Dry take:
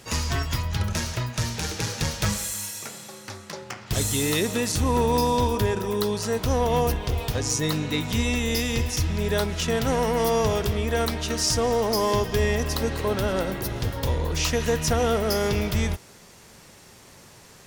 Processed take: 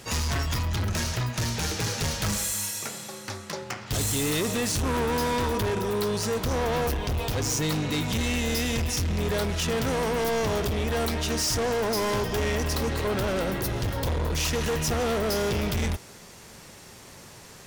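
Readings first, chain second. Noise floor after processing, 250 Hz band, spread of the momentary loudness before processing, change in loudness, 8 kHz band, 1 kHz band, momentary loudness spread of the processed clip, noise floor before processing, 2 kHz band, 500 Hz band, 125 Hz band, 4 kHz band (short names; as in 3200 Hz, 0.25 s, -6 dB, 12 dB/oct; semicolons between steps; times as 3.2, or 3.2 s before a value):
-47 dBFS, -2.0 dB, 6 LU, -2.0 dB, -1.0 dB, -3.0 dB, 10 LU, -50 dBFS, -0.5 dB, -3.0 dB, -2.0 dB, -1.5 dB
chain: hard clip -26.5 dBFS, distortion -7 dB; gain +2.5 dB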